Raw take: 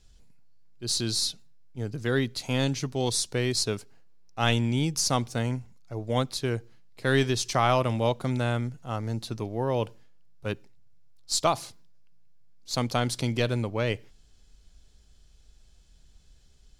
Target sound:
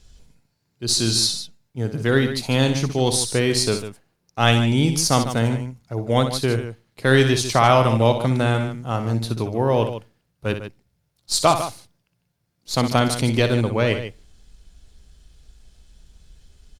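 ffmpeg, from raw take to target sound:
ffmpeg -i in.wav -filter_complex "[0:a]asplit=2[link_01][link_02];[link_02]aecho=0:1:61.22|148.7:0.355|0.282[link_03];[link_01][link_03]amix=inputs=2:normalize=0,volume=7.5dB" -ar 48000 -c:a libopus -b:a 48k out.opus

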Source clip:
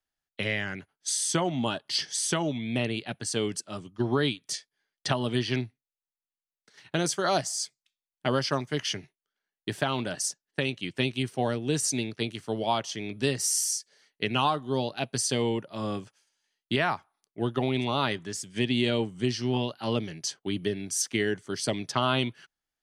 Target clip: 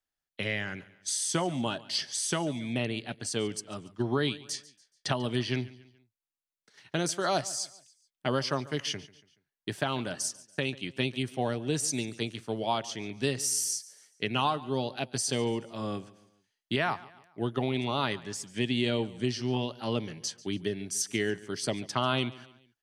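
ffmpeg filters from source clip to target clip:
ffmpeg -i in.wav -af "aecho=1:1:142|284|426:0.1|0.043|0.0185,volume=-2.5dB" out.wav

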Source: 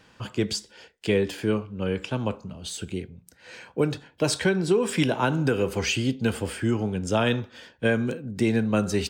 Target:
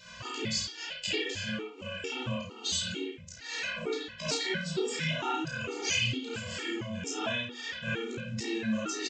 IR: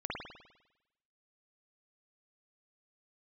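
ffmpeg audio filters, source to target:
-filter_complex "[0:a]bandreject=frequency=50:width_type=h:width=6,bandreject=frequency=100:width_type=h:width=6,bandreject=frequency=150:width_type=h:width=6,bandreject=frequency=200:width_type=h:width=6,bandreject=frequency=250:width_type=h:width=6,bandreject=frequency=300:width_type=h:width=6,bandreject=frequency=350:width_type=h:width=6,bandreject=frequency=400:width_type=h:width=6,bandreject=frequency=450:width_type=h:width=6,bandreject=frequency=500:width_type=h:width=6,acompressor=threshold=-40dB:ratio=4,crystalizer=i=8:c=0,aresample=16000,acrusher=bits=5:mode=log:mix=0:aa=0.000001,aresample=44100,flanger=delay=17.5:depth=6.6:speed=0.24,aecho=1:1:32|69:0.668|0.299[link_01];[1:a]atrim=start_sample=2205,atrim=end_sample=6615[link_02];[link_01][link_02]afir=irnorm=-1:irlink=0,afftfilt=real='re*gt(sin(2*PI*2.2*pts/sr)*(1-2*mod(floor(b*sr/1024/240),2)),0)':imag='im*gt(sin(2*PI*2.2*pts/sr)*(1-2*mod(floor(b*sr/1024/240),2)),0)':win_size=1024:overlap=0.75,volume=5dB"

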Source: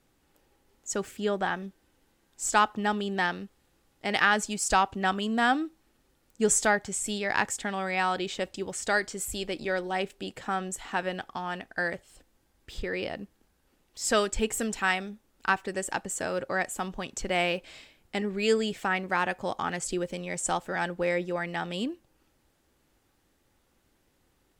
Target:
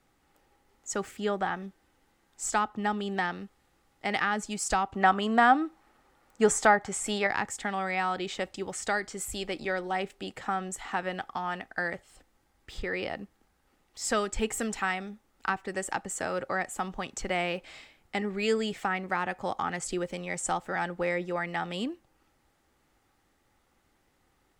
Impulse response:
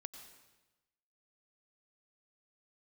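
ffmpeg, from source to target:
-filter_complex "[0:a]equalizer=frequency=800:width_type=o:width=0.33:gain=6,equalizer=frequency=1250:width_type=o:width=0.33:gain=6,equalizer=frequency=2000:width_type=o:width=0.33:gain=5,equalizer=frequency=12500:width_type=o:width=0.33:gain=-4,acrossover=split=410[link_01][link_02];[link_02]acompressor=threshold=-27dB:ratio=2.5[link_03];[link_01][link_03]amix=inputs=2:normalize=0,asettb=1/sr,asplit=3[link_04][link_05][link_06];[link_04]atrim=end=4.944[link_07];[link_05]atrim=start=4.94:end=7.27,asetpts=PTS-STARTPTS,afade=type=in:duration=0.004:curve=qsin,afade=type=out:start_time=2.326:duration=0.004:curve=qsin,equalizer=frequency=950:width=0.49:gain=8.5[link_08];[link_06]atrim=start=7.266[link_09];[link_07][link_08]acrossfade=duration=0.004:curve1=hsin:curve2=qsin[link_10];[link_10][link_09]acrossfade=duration=0.004:curve1=qsin:curve2=hsin,volume=-1.5dB"

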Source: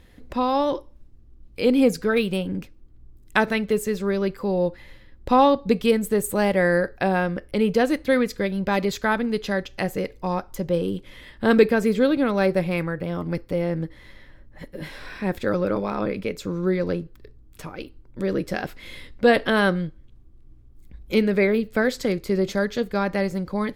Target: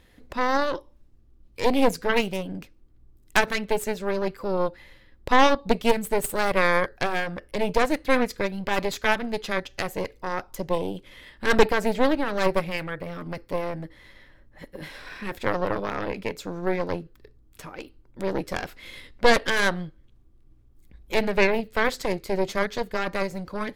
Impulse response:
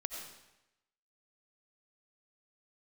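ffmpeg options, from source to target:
-af "lowshelf=frequency=330:gain=-5.5,aeval=exprs='0.596*(cos(1*acos(clip(val(0)/0.596,-1,1)))-cos(1*PI/2))+0.168*(cos(6*acos(clip(val(0)/0.596,-1,1)))-cos(6*PI/2))':channel_layout=same,volume=-1.5dB"

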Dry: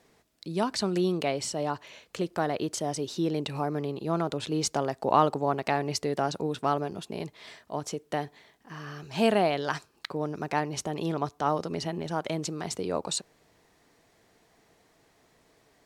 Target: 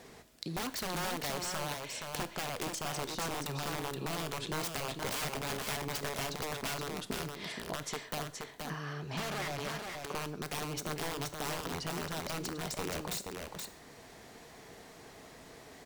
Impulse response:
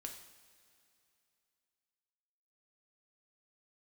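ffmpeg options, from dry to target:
-filter_complex "[0:a]aeval=exprs='(mod(15.8*val(0)+1,2)-1)/15.8':channel_layout=same,acompressor=threshold=-49dB:ratio=4,asettb=1/sr,asplit=3[link_01][link_02][link_03];[link_01]atrim=end=8.934[link_04];[link_02]atrim=start=8.93:end=10.11,asetpts=PTS-STARTPTS,afade=type=in:duration=0.004:curve=qsin,afade=type=out:start_time=1.176:duration=0.004:curve=qsin,aemphasis=mode=reproduction:type=cd[link_05];[link_03]atrim=start=10.106[link_06];[link_04][link_05]acrossfade=duration=0.004:curve1=hsin:curve2=qsin[link_07];[link_07][link_06]acrossfade=duration=0.004:curve1=qsin:curve2=hsin,aecho=1:1:474:0.596,asplit=2[link_08][link_09];[1:a]atrim=start_sample=2205,atrim=end_sample=6615[link_10];[link_09][link_10]afir=irnorm=-1:irlink=0,volume=0dB[link_11];[link_08][link_11]amix=inputs=2:normalize=0,volume=6dB"

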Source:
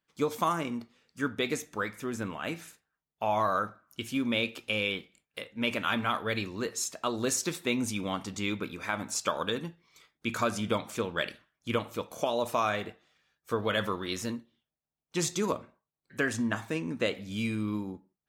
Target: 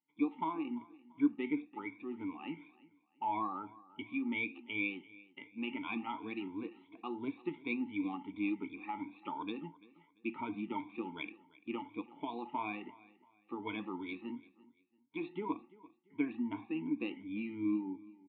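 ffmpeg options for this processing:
ffmpeg -i in.wav -filter_complex "[0:a]afftfilt=real='re*pow(10,18/40*sin(2*PI*(1.7*log(max(b,1)*sr/1024/100)/log(2)-(2.8)*(pts-256)/sr)))':imag='im*pow(10,18/40*sin(2*PI*(1.7*log(max(b,1)*sr/1024/100)/log(2)-(2.8)*(pts-256)/sr)))':win_size=1024:overlap=0.75,asplit=3[link_01][link_02][link_03];[link_01]bandpass=frequency=300:width_type=q:width=8,volume=0dB[link_04];[link_02]bandpass=frequency=870:width_type=q:width=8,volume=-6dB[link_05];[link_03]bandpass=frequency=2240:width_type=q:width=8,volume=-9dB[link_06];[link_04][link_05][link_06]amix=inputs=3:normalize=0,asplit=2[link_07][link_08];[link_08]aecho=0:1:341|682:0.0891|0.0285[link_09];[link_07][link_09]amix=inputs=2:normalize=0,aresample=8000,aresample=44100,volume=1.5dB" out.wav

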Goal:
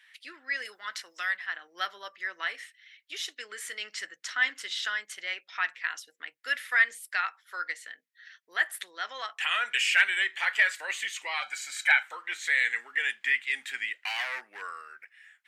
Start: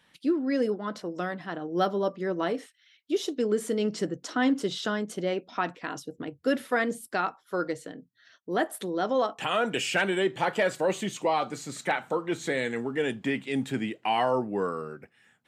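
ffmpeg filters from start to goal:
ffmpeg -i in.wav -filter_complex "[0:a]asettb=1/sr,asplit=3[link_01][link_02][link_03];[link_01]atrim=end=0.654[link_04];[link_02]atrim=start=0.65:end=1.37,asetpts=PTS-STARTPTS,afade=type=in:duration=0.004:curve=qsin,afade=type=out:start_time=0.716:duration=0.004:curve=qsin,highshelf=frequency=3300:gain=9[link_05];[link_03]atrim=start=1.366[link_06];[link_04][link_05]acrossfade=duration=0.004:curve1=hsin:curve2=qsin[link_07];[link_07][link_06]acrossfade=duration=0.004:curve1=qsin:curve2=hsin,asettb=1/sr,asplit=3[link_08][link_09][link_10];[link_08]atrim=end=11.424[link_11];[link_09]atrim=start=11.42:end=12.03,asetpts=PTS-STARTPTS,afade=type=in:duration=0.004:curve=qsin,afade=type=out:start_time=0.606:duration=0.004:curve=qsin,aecho=1:1:1.3:0.96,atrim=end_sample=26901[link_12];[link_10]atrim=start=12.026[link_13];[link_11][link_12]acrossfade=duration=0.004:curve1=hsin:curve2=qsin[link_14];[link_14][link_13]acrossfade=duration=0.004:curve1=qsin:curve2=hsin,asettb=1/sr,asplit=3[link_15][link_16][link_17];[link_15]atrim=end=14.004[link_18];[link_16]atrim=start=14:end=14.62,asetpts=PTS-STARTPTS,afade=type=in:duration=0.004:curve=qsin,afade=type=out:start_time=0.616:duration=0.004:curve=qsin,asoftclip=type=hard:threshold=-24.5dB[link_19];[link_17]atrim=start=14.616[link_20];[link_18][link_19]acrossfade=duration=0.004:curve1=hsin:curve2=qsin[link_21];[link_21][link_20]acrossfade=duration=0.004:curve1=qsin:curve2=hsin,highpass=frequency=1900:width_type=q:width=3.3" out.wav

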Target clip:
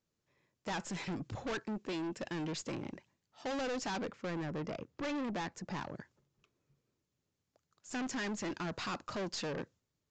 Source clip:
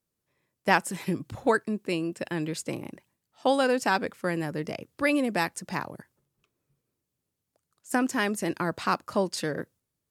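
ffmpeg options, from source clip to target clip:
ffmpeg -i in.wav -filter_complex "[0:a]asettb=1/sr,asplit=3[link_01][link_02][link_03];[link_01]atrim=end=4.054[link_04];[link_02]atrim=start=4.05:end=5.79,asetpts=PTS-STARTPTS,afade=type=in:duration=0.004:curve=qsin,afade=type=out:start_time=1.736:duration=0.004:curve=qsin,highshelf=frequency=2200:gain=-8.5[link_05];[link_03]atrim=start=5.786[link_06];[link_04][link_05]acrossfade=duration=0.004:curve1=hsin:curve2=qsin[link_07];[link_07][link_06]acrossfade=duration=0.004:curve1=qsin:curve2=hsin,aeval=exprs='(tanh(56.2*val(0)+0.2)-tanh(0.2))/56.2':channel_layout=same,aresample=16000,aresample=44100" out.wav

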